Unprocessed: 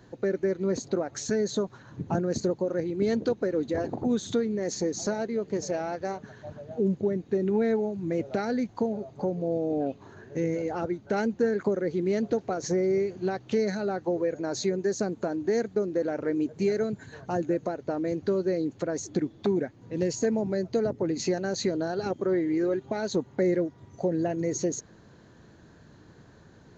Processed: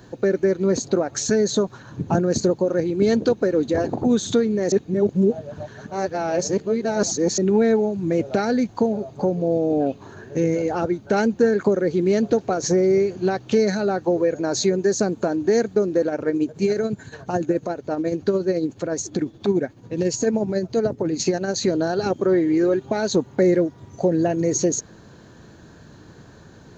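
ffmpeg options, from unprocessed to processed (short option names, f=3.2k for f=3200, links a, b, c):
-filter_complex "[0:a]asplit=3[a][b][c];[a]afade=t=out:st=16.03:d=0.02[d];[b]tremolo=f=14:d=0.5,afade=t=in:st=16.03:d=0.02,afade=t=out:st=21.66:d=0.02[e];[c]afade=t=in:st=21.66:d=0.02[f];[d][e][f]amix=inputs=3:normalize=0,asplit=3[g][h][i];[g]atrim=end=4.722[j];[h]atrim=start=4.718:end=7.382,asetpts=PTS-STARTPTS,areverse[k];[i]atrim=start=7.378[l];[j][k]acrossfade=d=0.004:c1=hsin:c2=hsin[m];[m][l]acrossfade=d=0.004:c1=hsin:c2=hsin,highshelf=f=6.3k:g=5.5,bandreject=f=2k:w=14,volume=7.5dB"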